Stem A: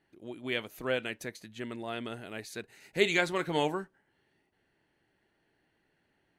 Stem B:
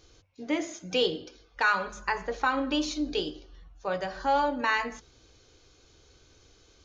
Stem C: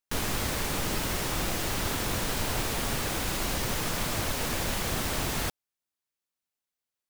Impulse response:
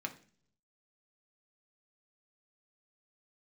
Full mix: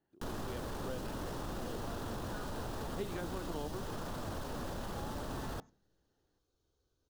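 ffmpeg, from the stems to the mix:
-filter_complex "[0:a]volume=-6.5dB[a];[1:a]adelay=700,volume=-20dB[b];[2:a]alimiter=level_in=3.5dB:limit=-24dB:level=0:latency=1:release=15,volume=-3.5dB,adelay=100,volume=0.5dB,asplit=2[c][d];[d]volume=-16dB[e];[3:a]atrim=start_sample=2205[f];[e][f]afir=irnorm=-1:irlink=0[g];[a][b][c][g]amix=inputs=4:normalize=0,equalizer=f=2.2k:t=o:w=0.61:g=-14,acrossover=split=350|2200|5100[h][i][j][k];[h]acompressor=threshold=-39dB:ratio=4[l];[i]acompressor=threshold=-42dB:ratio=4[m];[j]acompressor=threshold=-53dB:ratio=4[n];[k]acompressor=threshold=-49dB:ratio=4[o];[l][m][n][o]amix=inputs=4:normalize=0,highshelf=f=3.7k:g=-8.5"

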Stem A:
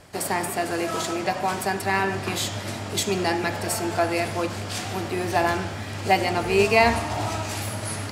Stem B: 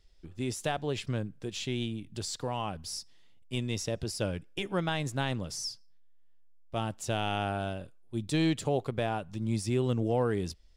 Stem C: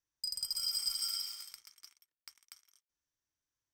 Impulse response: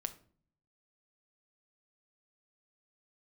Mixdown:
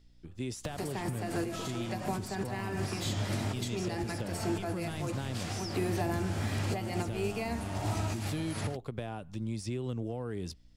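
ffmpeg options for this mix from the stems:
-filter_complex "[0:a]acompressor=mode=upward:threshold=-25dB:ratio=2.5,adelay=650,volume=2.5dB[a];[1:a]acompressor=threshold=-30dB:ratio=6,volume=-1dB,asplit=2[b][c];[2:a]adelay=2400,volume=-19dB[d];[c]apad=whole_len=386697[e];[a][e]sidechaincompress=threshold=-47dB:ratio=5:attack=33:release=117[f];[f][b][d]amix=inputs=3:normalize=0,acrossover=split=320|6900[g][h][i];[g]acompressor=threshold=-30dB:ratio=4[j];[h]acompressor=threshold=-39dB:ratio=4[k];[i]acompressor=threshold=-51dB:ratio=4[l];[j][k][l]amix=inputs=3:normalize=0,aeval=exprs='val(0)+0.000794*(sin(2*PI*60*n/s)+sin(2*PI*2*60*n/s)/2+sin(2*PI*3*60*n/s)/3+sin(2*PI*4*60*n/s)/4+sin(2*PI*5*60*n/s)/5)':c=same"

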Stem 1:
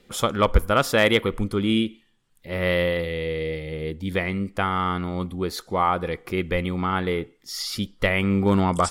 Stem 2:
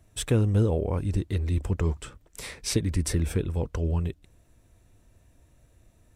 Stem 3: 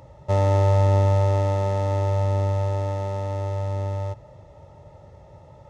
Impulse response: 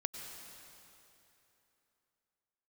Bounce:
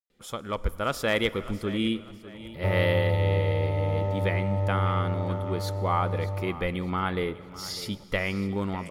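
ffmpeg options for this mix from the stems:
-filter_complex "[0:a]dynaudnorm=f=130:g=11:m=11.5dB,adelay=100,volume=-14dB,asplit=3[a][b][c];[b]volume=-12.5dB[d];[c]volume=-14.5dB[e];[2:a]lowpass=f=1k:p=1,alimiter=limit=-16dB:level=0:latency=1,adelay=2350,volume=-3.5dB[f];[3:a]atrim=start_sample=2205[g];[d][g]afir=irnorm=-1:irlink=0[h];[e]aecho=0:1:600|1200|1800|2400|3000:1|0.36|0.13|0.0467|0.0168[i];[a][f][h][i]amix=inputs=4:normalize=0"

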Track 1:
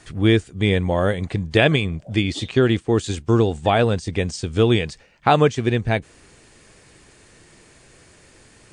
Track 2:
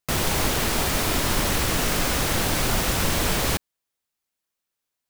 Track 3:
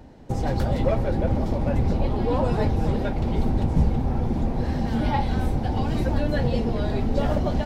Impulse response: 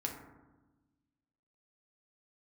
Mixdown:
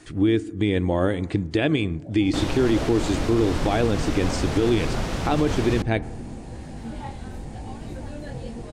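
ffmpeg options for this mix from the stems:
-filter_complex "[0:a]equalizer=f=310:t=o:w=0.48:g=11.5,alimiter=limit=-7dB:level=0:latency=1:release=241,volume=-3dB,asplit=2[a][b];[b]volume=-16.5dB[c];[1:a]lowpass=6.5k,tiltshelf=f=970:g=4,adelay=2250,volume=-5dB[d];[2:a]flanger=delay=18:depth=6.2:speed=0.86,adelay=1900,volume=-8.5dB[e];[3:a]atrim=start_sample=2205[f];[c][f]afir=irnorm=-1:irlink=0[g];[a][d][e][g]amix=inputs=4:normalize=0,alimiter=limit=-11.5dB:level=0:latency=1:release=44"

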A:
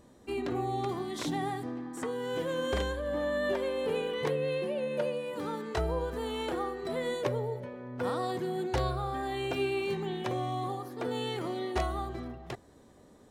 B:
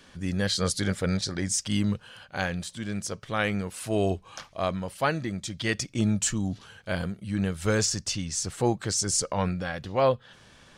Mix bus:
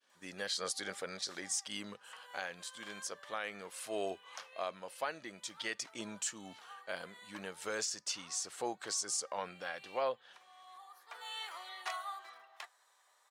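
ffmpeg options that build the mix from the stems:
-filter_complex "[0:a]highpass=f=950:w=0.5412,highpass=f=950:w=1.3066,flanger=delay=1.2:depth=7.1:regen=-66:speed=0.67:shape=triangular,adelay=100,volume=2.5dB[a];[1:a]highpass=510,agate=range=-33dB:threshold=-48dB:ratio=3:detection=peak,volume=-7dB,asplit=2[b][c];[c]apad=whole_len=591214[d];[a][d]sidechaincompress=threshold=-50dB:ratio=16:attack=44:release=857[e];[e][b]amix=inputs=2:normalize=0,alimiter=level_in=1dB:limit=-24dB:level=0:latency=1:release=229,volume=-1dB"

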